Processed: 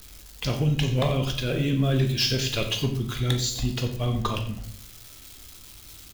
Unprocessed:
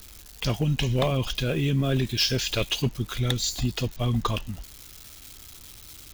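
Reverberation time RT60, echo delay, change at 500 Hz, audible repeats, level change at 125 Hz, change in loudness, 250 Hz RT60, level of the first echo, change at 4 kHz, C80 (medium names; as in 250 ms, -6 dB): 0.70 s, 89 ms, 0.0 dB, 1, +1.5 dB, +0.5 dB, 0.85 s, -15.0 dB, 0.0 dB, 11.0 dB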